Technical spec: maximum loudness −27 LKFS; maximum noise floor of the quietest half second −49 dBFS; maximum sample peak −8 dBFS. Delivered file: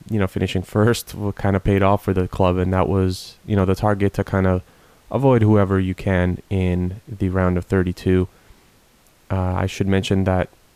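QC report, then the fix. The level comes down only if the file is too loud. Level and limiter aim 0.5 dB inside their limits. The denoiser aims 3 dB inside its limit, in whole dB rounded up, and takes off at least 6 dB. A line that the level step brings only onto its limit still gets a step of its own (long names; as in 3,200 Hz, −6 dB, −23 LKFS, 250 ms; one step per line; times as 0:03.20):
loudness −20.0 LKFS: out of spec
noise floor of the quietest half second −55 dBFS: in spec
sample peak −4.5 dBFS: out of spec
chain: level −7.5 dB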